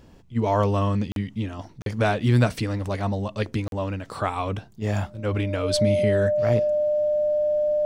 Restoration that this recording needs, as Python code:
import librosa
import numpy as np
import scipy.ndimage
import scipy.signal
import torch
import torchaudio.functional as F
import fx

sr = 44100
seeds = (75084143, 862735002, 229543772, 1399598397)

y = fx.notch(x, sr, hz=600.0, q=30.0)
y = fx.fix_interpolate(y, sr, at_s=(1.12, 1.82, 3.68), length_ms=42.0)